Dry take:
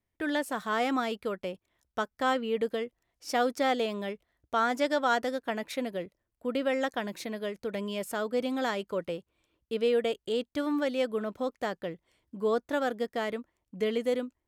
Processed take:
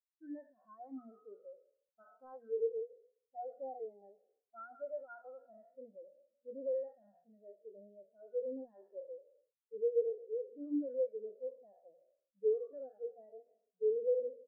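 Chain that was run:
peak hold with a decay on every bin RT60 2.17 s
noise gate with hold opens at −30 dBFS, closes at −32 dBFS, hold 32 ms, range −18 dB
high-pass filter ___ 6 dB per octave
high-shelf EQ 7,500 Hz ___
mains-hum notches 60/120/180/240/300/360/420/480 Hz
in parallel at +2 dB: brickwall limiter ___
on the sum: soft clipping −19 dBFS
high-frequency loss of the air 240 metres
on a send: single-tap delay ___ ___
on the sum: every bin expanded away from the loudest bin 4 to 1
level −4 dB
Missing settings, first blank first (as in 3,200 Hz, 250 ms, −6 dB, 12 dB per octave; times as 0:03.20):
80 Hz, +10.5 dB, −18 dBFS, 436 ms, −21 dB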